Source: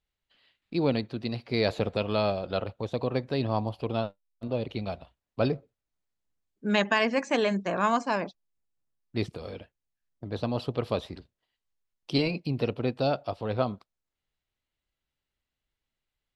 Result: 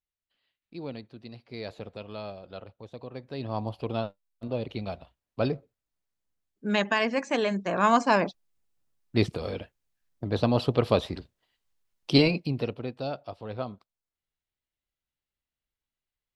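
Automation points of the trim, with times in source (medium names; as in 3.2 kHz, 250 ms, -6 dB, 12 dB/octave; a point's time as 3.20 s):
3.14 s -12 dB
3.69 s -1 dB
7.60 s -1 dB
8.04 s +6 dB
12.22 s +6 dB
12.88 s -6.5 dB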